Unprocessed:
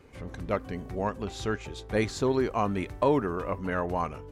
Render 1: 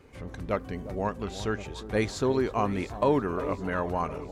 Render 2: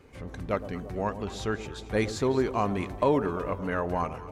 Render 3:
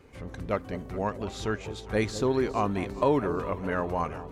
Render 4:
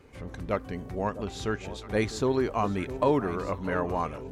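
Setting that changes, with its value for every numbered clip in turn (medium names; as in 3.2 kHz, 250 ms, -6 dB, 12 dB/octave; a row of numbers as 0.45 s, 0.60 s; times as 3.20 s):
echo whose repeats swap between lows and highs, time: 355 ms, 113 ms, 204 ms, 654 ms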